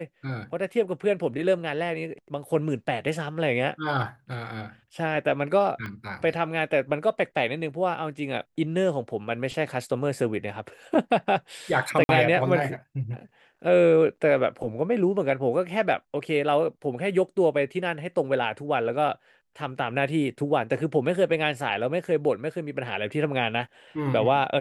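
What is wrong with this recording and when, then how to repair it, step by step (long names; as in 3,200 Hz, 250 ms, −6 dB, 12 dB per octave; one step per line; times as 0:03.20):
0:05.86: click −23 dBFS
0:12.04–0:12.09: drop-out 51 ms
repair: click removal
repair the gap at 0:12.04, 51 ms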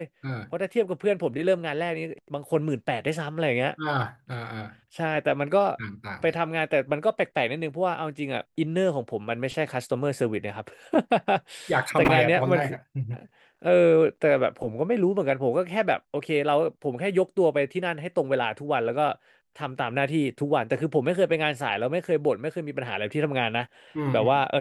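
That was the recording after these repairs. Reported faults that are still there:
0:05.86: click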